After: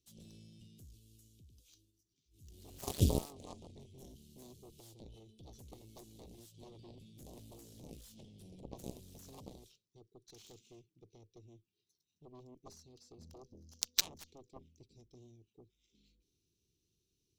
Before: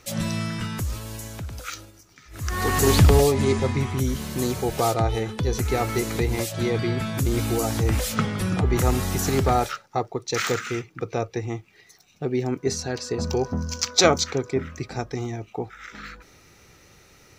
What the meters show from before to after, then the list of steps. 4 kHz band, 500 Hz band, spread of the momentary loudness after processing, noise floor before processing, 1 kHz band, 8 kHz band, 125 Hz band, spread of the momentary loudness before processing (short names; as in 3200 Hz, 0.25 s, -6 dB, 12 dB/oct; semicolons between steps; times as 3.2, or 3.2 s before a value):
-16.0 dB, -27.0 dB, 25 LU, -55 dBFS, -29.5 dB, -16.5 dB, -21.0 dB, 15 LU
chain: elliptic band-stop 390–3100 Hz, stop band 40 dB; added harmonics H 3 -9 dB, 6 -39 dB, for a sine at -3.5 dBFS; gain -3 dB